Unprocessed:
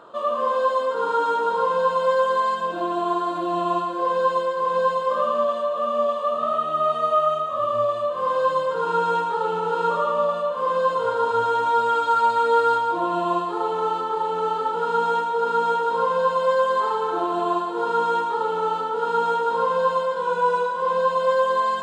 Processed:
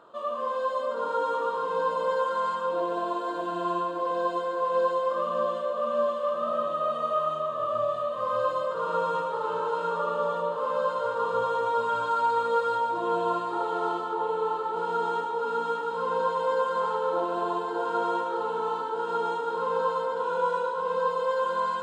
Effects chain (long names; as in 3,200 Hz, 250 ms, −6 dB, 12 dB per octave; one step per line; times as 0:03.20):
0:14.13–0:14.76: high-shelf EQ 4,600 Hz −10.5 dB
delay that swaps between a low-pass and a high-pass 586 ms, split 890 Hz, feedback 60%, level −2 dB
level −7.5 dB